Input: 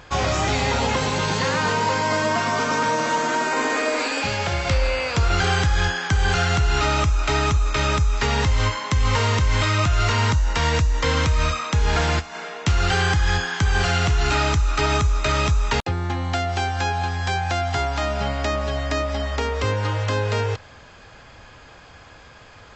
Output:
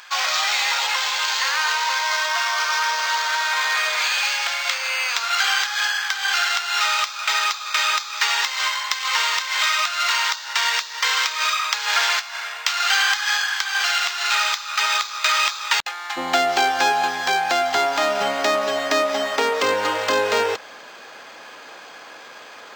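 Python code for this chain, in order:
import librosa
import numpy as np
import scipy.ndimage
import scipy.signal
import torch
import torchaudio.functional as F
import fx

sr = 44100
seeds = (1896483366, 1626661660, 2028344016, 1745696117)

y = fx.bessel_highpass(x, sr, hz=fx.steps((0.0, 1400.0), (16.16, 380.0)), order=4)
y = fx.rider(y, sr, range_db=10, speed_s=2.0)
y = fx.high_shelf(y, sr, hz=6300.0, db=11.5)
y = np.interp(np.arange(len(y)), np.arange(len(y))[::4], y[::4])
y = F.gain(torch.from_numpy(y), 6.0).numpy()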